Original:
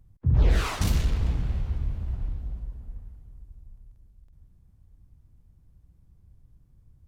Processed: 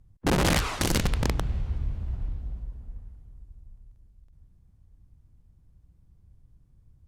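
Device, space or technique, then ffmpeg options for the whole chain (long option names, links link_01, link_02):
overflowing digital effects unit: -af "aeval=exprs='(mod(7.08*val(0)+1,2)-1)/7.08':channel_layout=same,lowpass=12000,volume=-1dB"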